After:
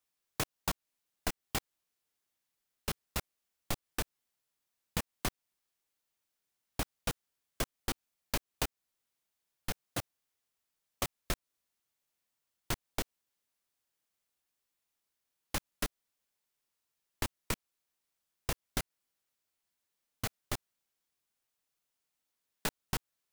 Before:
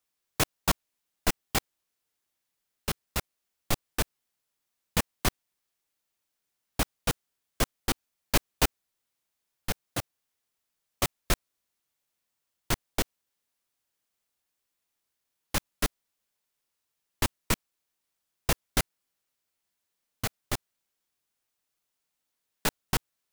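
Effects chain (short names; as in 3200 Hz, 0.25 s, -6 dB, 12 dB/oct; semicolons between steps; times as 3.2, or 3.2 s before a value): compressor 6:1, threshold -27 dBFS, peak gain reduction 9.5 dB; gain -3 dB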